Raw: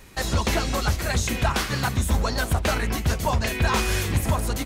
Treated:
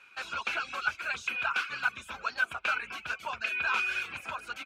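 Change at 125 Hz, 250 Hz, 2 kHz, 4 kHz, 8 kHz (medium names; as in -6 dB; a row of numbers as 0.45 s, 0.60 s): -34.5 dB, -26.5 dB, -0.5 dB, -9.5 dB, -20.0 dB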